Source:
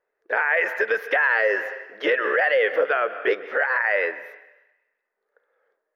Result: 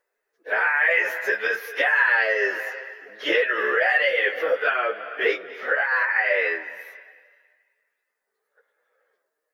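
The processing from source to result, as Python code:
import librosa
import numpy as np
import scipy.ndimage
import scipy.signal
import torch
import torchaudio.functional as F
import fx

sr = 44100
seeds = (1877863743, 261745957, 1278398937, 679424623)

y = fx.stretch_vocoder_free(x, sr, factor=1.6)
y = fx.high_shelf(y, sr, hz=2600.0, db=11.5)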